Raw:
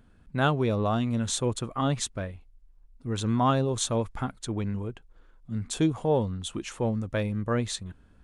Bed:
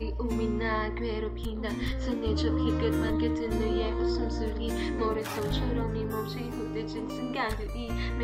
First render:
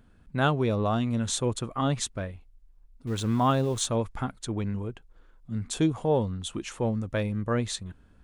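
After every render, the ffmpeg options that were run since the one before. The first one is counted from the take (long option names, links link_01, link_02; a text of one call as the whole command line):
ffmpeg -i in.wav -filter_complex "[0:a]asettb=1/sr,asplit=3[link_01][link_02][link_03];[link_01]atrim=end=3.074[link_04];[link_02]atrim=start=3.07:end=3.86,asetpts=PTS-STARTPTS,afade=type=in:duration=0.004:curve=qsin,afade=type=out:start_time=0.786:duration=0.004:curve=qsin,aeval=exprs='val(0)*gte(abs(val(0)),0.00794)':channel_layout=same[link_05];[link_03]atrim=start=3.856[link_06];[link_04][link_05]acrossfade=duration=0.004:curve1=hsin:curve2=qsin[link_07];[link_07][link_06]acrossfade=duration=0.004:curve1=qsin:curve2=hsin" out.wav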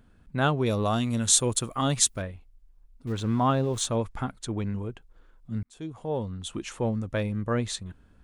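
ffmpeg -i in.wav -filter_complex "[0:a]asettb=1/sr,asplit=3[link_01][link_02][link_03];[link_01]atrim=end=0.664[link_04];[link_02]atrim=start=0.66:end=2.22,asetpts=PTS-STARTPTS,afade=type=in:duration=0.004:curve=qsin,afade=type=out:start_time=1.556:duration=0.004:curve=qsin,aemphasis=mode=production:type=75kf[link_05];[link_03]atrim=start=2.216[link_06];[link_04][link_05]acrossfade=duration=0.004:curve1=hsin:curve2=qsin[link_07];[link_07][link_06]acrossfade=duration=0.004:curve1=qsin:curve2=hsin,asettb=1/sr,asplit=3[link_08][link_09][link_10];[link_08]atrim=end=3.124[link_11];[link_09]atrim=start=3.12:end=3.74,asetpts=PTS-STARTPTS,afade=type=in:duration=0.004:curve=qsin,afade=type=out:start_time=0.616:duration=0.004:curve=qsin,lowpass=frequency=3500:poles=1[link_12];[link_10]atrim=start=3.736[link_13];[link_11][link_12]acrossfade=duration=0.004:curve1=hsin:curve2=qsin[link_14];[link_14][link_13]acrossfade=duration=0.004:curve1=qsin:curve2=hsin,asplit=2[link_15][link_16];[link_15]atrim=end=5.63,asetpts=PTS-STARTPTS,afade=type=out:start_time=5.626:duration=0.004:curve=hsin[link_17];[link_16]atrim=start=5.63,asetpts=PTS-STARTPTS,afade=type=in:duration=0.97[link_18];[link_17][link_18]concat=n=2:v=0:a=1" out.wav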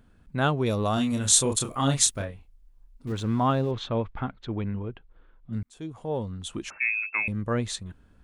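ffmpeg -i in.wav -filter_complex "[0:a]asettb=1/sr,asplit=3[link_01][link_02][link_03];[link_01]atrim=end=0.944[link_04];[link_02]atrim=start=0.94:end=3.12,asetpts=PTS-STARTPTS,afade=type=in:duration=0.004:curve=qsin,afade=type=out:start_time=2.176:duration=0.004:curve=qsin,asplit=2[link_05][link_06];[link_06]adelay=29,volume=-5dB[link_07];[link_05][link_07]amix=inputs=2:normalize=0,atrim=end_sample=96138[link_08];[link_03]atrim=start=3.116[link_09];[link_04][link_08]acrossfade=duration=0.004:curve1=hsin:curve2=qsin[link_10];[link_10][link_09]acrossfade=duration=0.004:curve1=qsin:curve2=hsin,asettb=1/sr,asplit=3[link_11][link_12][link_13];[link_11]atrim=end=3.714[link_14];[link_12]atrim=start=3.71:end=5.53,asetpts=PTS-STARTPTS,afade=type=in:duration=0.004:curve=qsin,afade=type=out:start_time=1.816:duration=0.004:curve=qsin,lowpass=frequency=3600:width=0.5412,lowpass=frequency=3600:width=1.3066[link_15];[link_13]atrim=start=5.526[link_16];[link_14][link_15]acrossfade=duration=0.004:curve1=hsin:curve2=qsin[link_17];[link_17][link_16]acrossfade=duration=0.004:curve1=qsin:curve2=hsin,asettb=1/sr,asplit=3[link_18][link_19][link_20];[link_18]atrim=end=6.704[link_21];[link_19]atrim=start=6.7:end=7.28,asetpts=PTS-STARTPTS,afade=type=in:duration=0.004:curve=qsin,afade=type=out:start_time=0.576:duration=0.004:curve=qsin,lowpass=frequency=2300:width_type=q:width=0.5098,lowpass=frequency=2300:width_type=q:width=0.6013,lowpass=frequency=2300:width_type=q:width=0.9,lowpass=frequency=2300:width_type=q:width=2.563,afreqshift=-2700[link_22];[link_20]atrim=start=7.276[link_23];[link_21][link_22]acrossfade=duration=0.004:curve1=hsin:curve2=qsin[link_24];[link_24][link_23]acrossfade=duration=0.004:curve1=qsin:curve2=hsin" out.wav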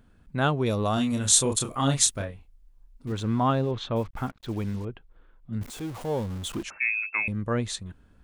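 ffmpeg -i in.wav -filter_complex "[0:a]asettb=1/sr,asplit=3[link_01][link_02][link_03];[link_01]atrim=end=3.964[link_04];[link_02]atrim=start=3.96:end=4.85,asetpts=PTS-STARTPTS,afade=type=in:duration=0.004:curve=qsin,afade=type=out:start_time=0.886:duration=0.004:curve=qsin,acrusher=bits=7:mix=0:aa=0.5[link_05];[link_03]atrim=start=4.846[link_06];[link_04][link_05]acrossfade=duration=0.004:curve1=hsin:curve2=qsin[link_07];[link_07][link_06]acrossfade=duration=0.004:curve1=qsin:curve2=hsin,asettb=1/sr,asplit=3[link_08][link_09][link_10];[link_08]atrim=end=5.614[link_11];[link_09]atrim=start=5.61:end=6.63,asetpts=PTS-STARTPTS,afade=type=in:duration=0.004:curve=qsin,afade=type=out:start_time=1.016:duration=0.004:curve=qsin,aeval=exprs='val(0)+0.5*0.015*sgn(val(0))':channel_layout=same[link_12];[link_10]atrim=start=6.626[link_13];[link_11][link_12]acrossfade=duration=0.004:curve1=hsin:curve2=qsin[link_14];[link_14][link_13]acrossfade=duration=0.004:curve1=qsin:curve2=hsin" out.wav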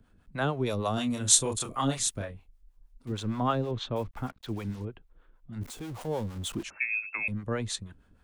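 ffmpeg -i in.wav -filter_complex "[0:a]acrossover=split=200|450|1500[link_01][link_02][link_03][link_04];[link_01]volume=31.5dB,asoftclip=hard,volume=-31.5dB[link_05];[link_05][link_02][link_03][link_04]amix=inputs=4:normalize=0,acrossover=split=480[link_06][link_07];[link_06]aeval=exprs='val(0)*(1-0.7/2+0.7/2*cos(2*PI*6.4*n/s))':channel_layout=same[link_08];[link_07]aeval=exprs='val(0)*(1-0.7/2-0.7/2*cos(2*PI*6.4*n/s))':channel_layout=same[link_09];[link_08][link_09]amix=inputs=2:normalize=0" out.wav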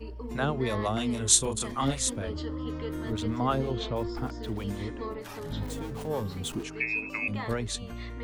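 ffmpeg -i in.wav -i bed.wav -filter_complex "[1:a]volume=-7.5dB[link_01];[0:a][link_01]amix=inputs=2:normalize=0" out.wav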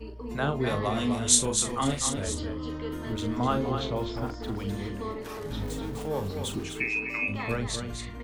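ffmpeg -i in.wav -filter_complex "[0:a]asplit=2[link_01][link_02];[link_02]adelay=41,volume=-9dB[link_03];[link_01][link_03]amix=inputs=2:normalize=0,aecho=1:1:252:0.447" out.wav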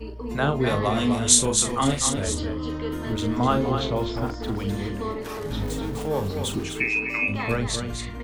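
ffmpeg -i in.wav -af "volume=5dB,alimiter=limit=-1dB:level=0:latency=1" out.wav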